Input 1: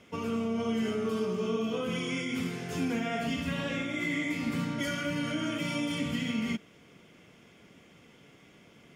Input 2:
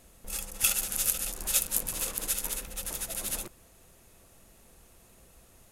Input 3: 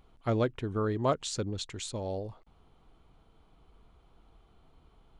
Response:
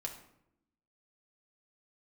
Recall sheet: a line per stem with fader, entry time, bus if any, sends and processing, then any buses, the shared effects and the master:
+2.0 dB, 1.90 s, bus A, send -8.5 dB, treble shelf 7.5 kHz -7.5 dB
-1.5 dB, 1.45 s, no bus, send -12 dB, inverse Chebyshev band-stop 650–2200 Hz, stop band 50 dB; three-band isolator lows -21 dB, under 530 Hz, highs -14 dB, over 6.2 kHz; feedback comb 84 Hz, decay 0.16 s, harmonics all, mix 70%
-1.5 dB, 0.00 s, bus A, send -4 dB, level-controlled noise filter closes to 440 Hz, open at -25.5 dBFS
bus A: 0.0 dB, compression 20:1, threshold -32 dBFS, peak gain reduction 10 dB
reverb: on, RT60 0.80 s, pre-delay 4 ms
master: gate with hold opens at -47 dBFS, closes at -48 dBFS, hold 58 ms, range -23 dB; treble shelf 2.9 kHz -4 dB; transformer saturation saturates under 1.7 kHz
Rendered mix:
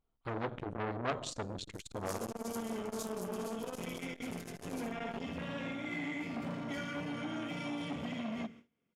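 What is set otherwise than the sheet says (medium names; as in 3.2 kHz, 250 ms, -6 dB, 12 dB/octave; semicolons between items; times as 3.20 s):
stem 1 +2.0 dB -> -6.5 dB; stem 3: missing level-controlled noise filter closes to 440 Hz, open at -25.5 dBFS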